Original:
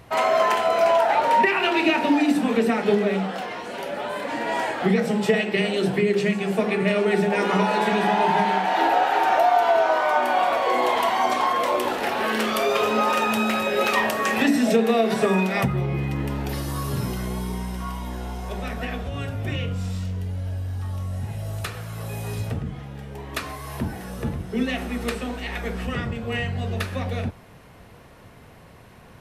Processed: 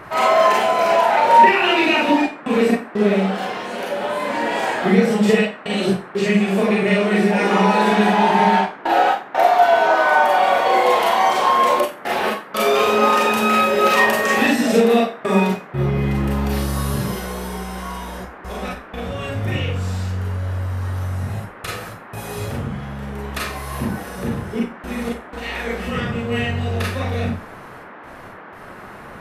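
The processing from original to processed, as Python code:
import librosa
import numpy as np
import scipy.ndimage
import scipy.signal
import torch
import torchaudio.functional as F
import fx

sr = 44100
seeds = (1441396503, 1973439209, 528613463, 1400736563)

y = fx.step_gate(x, sr, bpm=61, pattern='xxxxxxxxx.x.x', floor_db=-60.0, edge_ms=4.5)
y = fx.rev_schroeder(y, sr, rt60_s=0.32, comb_ms=30, drr_db=-3.5)
y = fx.dmg_noise_band(y, sr, seeds[0], low_hz=170.0, high_hz=1700.0, level_db=-39.0)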